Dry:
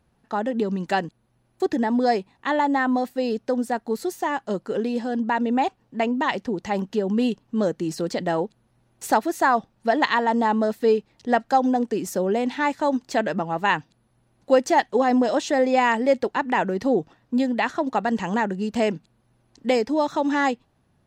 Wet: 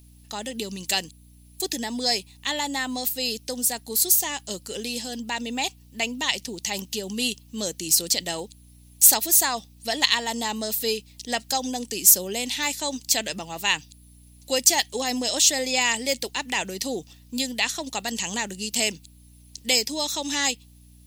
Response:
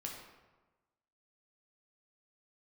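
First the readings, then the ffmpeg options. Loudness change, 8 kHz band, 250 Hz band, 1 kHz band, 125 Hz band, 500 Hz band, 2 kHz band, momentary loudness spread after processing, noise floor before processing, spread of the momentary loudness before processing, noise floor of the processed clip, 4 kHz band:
0.0 dB, +19.5 dB, −9.5 dB, −9.0 dB, −7.5 dB, −9.5 dB, −1.0 dB, 13 LU, −66 dBFS, 7 LU, −51 dBFS, +12.0 dB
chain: -af "aemphasis=mode=production:type=50fm,aeval=exprs='val(0)+0.00891*(sin(2*PI*60*n/s)+sin(2*PI*2*60*n/s)/2+sin(2*PI*3*60*n/s)/3+sin(2*PI*4*60*n/s)/4+sin(2*PI*5*60*n/s)/5)':channel_layout=same,aexciter=amount=6.5:drive=6.7:freq=2200,volume=-9dB"

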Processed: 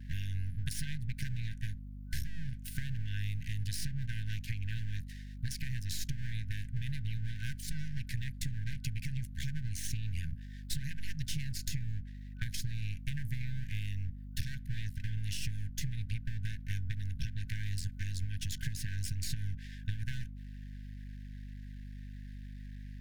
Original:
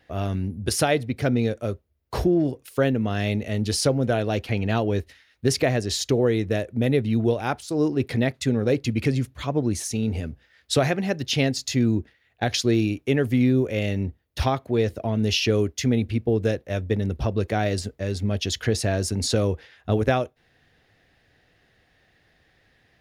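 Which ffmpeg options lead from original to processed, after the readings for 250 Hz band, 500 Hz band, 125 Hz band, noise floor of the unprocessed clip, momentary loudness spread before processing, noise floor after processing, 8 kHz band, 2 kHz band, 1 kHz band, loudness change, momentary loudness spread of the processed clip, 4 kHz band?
−23.5 dB, below −40 dB, −10.0 dB, −64 dBFS, 6 LU, −45 dBFS, −12.5 dB, −14.0 dB, below −40 dB, −15.5 dB, 10 LU, −15.0 dB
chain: -filter_complex "[0:a]equalizer=frequency=3200:width_type=o:width=2.9:gain=-6,aeval=exprs='max(val(0),0)':channel_layout=same,acompressor=threshold=-29dB:ratio=20,afftfilt=real='re*(1-between(b*sr/4096,170,1500))':imag='im*(1-between(b*sr/4096,170,1500))':win_size=4096:overlap=0.75,acrossover=split=540|5800[link_01][link_02][link_03];[link_01]acompressor=threshold=-41dB:ratio=4[link_04];[link_02]acompressor=threshold=-53dB:ratio=4[link_05];[link_03]acompressor=threshold=-52dB:ratio=4[link_06];[link_04][link_05][link_06]amix=inputs=3:normalize=0,lowshelf=frequency=74:gain=3,aeval=exprs='val(0)+0.00282*(sin(2*PI*50*n/s)+sin(2*PI*2*50*n/s)/2+sin(2*PI*3*50*n/s)/3+sin(2*PI*4*50*n/s)/4+sin(2*PI*5*50*n/s)/5)':channel_layout=same,volume=7.5dB"

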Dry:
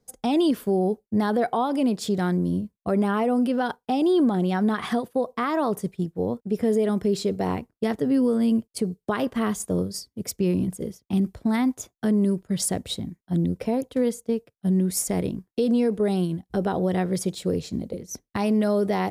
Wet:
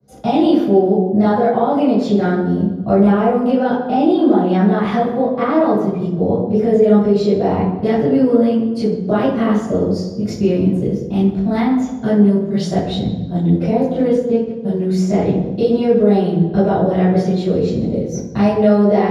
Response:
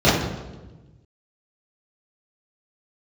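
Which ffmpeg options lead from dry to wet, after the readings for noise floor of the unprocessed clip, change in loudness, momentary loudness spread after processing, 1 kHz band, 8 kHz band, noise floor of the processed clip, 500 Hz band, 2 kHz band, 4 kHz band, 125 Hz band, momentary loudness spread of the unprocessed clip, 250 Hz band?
−83 dBFS, +9.0 dB, 6 LU, +9.0 dB, can't be measured, −25 dBFS, +10.5 dB, +5.0 dB, +3.5 dB, +9.5 dB, 7 LU, +9.0 dB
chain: -filter_complex "[0:a]acrossover=split=430|6000[link_01][link_02][link_03];[link_01]acompressor=threshold=-35dB:ratio=4[link_04];[link_02]acompressor=threshold=-27dB:ratio=4[link_05];[link_03]acompressor=threshold=-45dB:ratio=4[link_06];[link_04][link_05][link_06]amix=inputs=3:normalize=0[link_07];[1:a]atrim=start_sample=2205[link_08];[link_07][link_08]afir=irnorm=-1:irlink=0,adynamicequalizer=threshold=0.112:dfrequency=2800:dqfactor=0.7:tfrequency=2800:tqfactor=0.7:attack=5:release=100:ratio=0.375:range=2:mode=cutabove:tftype=highshelf,volume=-13.5dB"

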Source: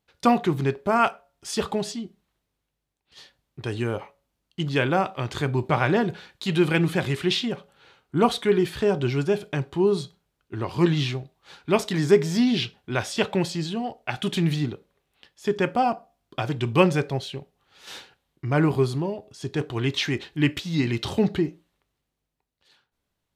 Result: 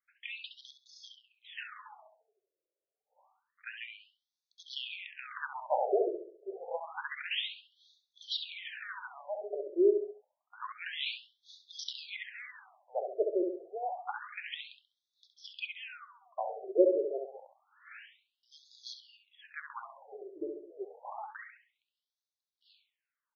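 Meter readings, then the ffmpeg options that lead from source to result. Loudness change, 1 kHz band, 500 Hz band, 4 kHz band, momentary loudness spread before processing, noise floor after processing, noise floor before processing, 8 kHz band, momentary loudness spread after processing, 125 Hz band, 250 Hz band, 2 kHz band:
−11.5 dB, −13.5 dB, −9.5 dB, −9.5 dB, 14 LU, below −85 dBFS, −80 dBFS, below −15 dB, 22 LU, below −40 dB, −18.0 dB, −11.5 dB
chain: -filter_complex "[0:a]asplit=2[link_01][link_02];[link_02]adelay=67,lowpass=frequency=2800:poles=1,volume=-4dB,asplit=2[link_03][link_04];[link_04]adelay=67,lowpass=frequency=2800:poles=1,volume=0.47,asplit=2[link_05][link_06];[link_06]adelay=67,lowpass=frequency=2800:poles=1,volume=0.47,asplit=2[link_07][link_08];[link_08]adelay=67,lowpass=frequency=2800:poles=1,volume=0.47,asplit=2[link_09][link_10];[link_10]adelay=67,lowpass=frequency=2800:poles=1,volume=0.47,asplit=2[link_11][link_12];[link_12]adelay=67,lowpass=frequency=2800:poles=1,volume=0.47[link_13];[link_01][link_03][link_05][link_07][link_09][link_11][link_13]amix=inputs=7:normalize=0,afftfilt=real='re*between(b*sr/1024,460*pow(4800/460,0.5+0.5*sin(2*PI*0.28*pts/sr))/1.41,460*pow(4800/460,0.5+0.5*sin(2*PI*0.28*pts/sr))*1.41)':imag='im*between(b*sr/1024,460*pow(4800/460,0.5+0.5*sin(2*PI*0.28*pts/sr))/1.41,460*pow(4800/460,0.5+0.5*sin(2*PI*0.28*pts/sr))*1.41)':win_size=1024:overlap=0.75,volume=-4dB"

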